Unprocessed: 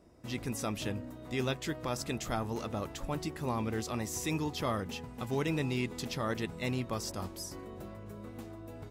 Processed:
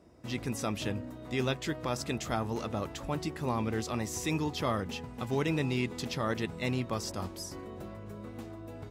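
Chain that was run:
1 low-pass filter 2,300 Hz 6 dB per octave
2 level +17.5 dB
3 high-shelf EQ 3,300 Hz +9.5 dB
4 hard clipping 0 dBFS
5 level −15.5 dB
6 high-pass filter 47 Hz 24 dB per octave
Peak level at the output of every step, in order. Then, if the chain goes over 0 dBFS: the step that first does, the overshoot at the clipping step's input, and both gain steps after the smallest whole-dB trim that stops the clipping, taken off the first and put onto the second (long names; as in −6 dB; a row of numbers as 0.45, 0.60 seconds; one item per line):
−21.5, −4.0, −3.0, −3.0, −18.5, −18.0 dBFS
no step passes full scale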